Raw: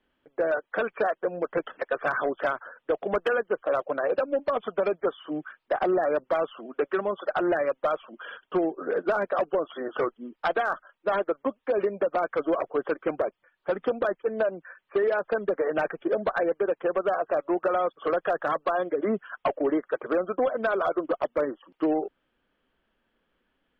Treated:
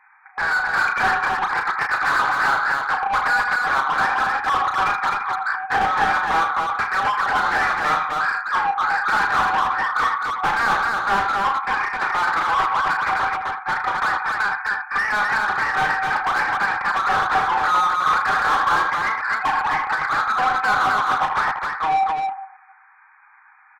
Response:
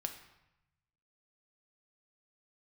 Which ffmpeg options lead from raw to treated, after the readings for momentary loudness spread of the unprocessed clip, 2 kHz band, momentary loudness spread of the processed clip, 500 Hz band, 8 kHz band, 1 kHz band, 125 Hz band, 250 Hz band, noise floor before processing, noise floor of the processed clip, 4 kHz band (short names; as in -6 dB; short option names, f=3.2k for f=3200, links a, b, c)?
6 LU, +15.5 dB, 4 LU, -10.0 dB, n/a, +13.5 dB, +7.0 dB, -7.0 dB, -77 dBFS, -51 dBFS, +16.5 dB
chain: -filter_complex "[0:a]asplit=2[a][b];[1:a]atrim=start_sample=2205,adelay=80[c];[b][c]afir=irnorm=-1:irlink=0,volume=-13dB[d];[a][d]amix=inputs=2:normalize=0,afftfilt=real='re*between(b*sr/4096,750,2500)':imag='im*between(b*sr/4096,750,2500)':win_size=4096:overlap=0.75,asplit=2[e][f];[f]highpass=f=720:p=1,volume=30dB,asoftclip=type=tanh:threshold=-16dB[g];[e][g]amix=inputs=2:normalize=0,lowpass=f=1.4k:p=1,volume=-6dB,aecho=1:1:34.99|259.5:0.501|0.708,volume=4.5dB"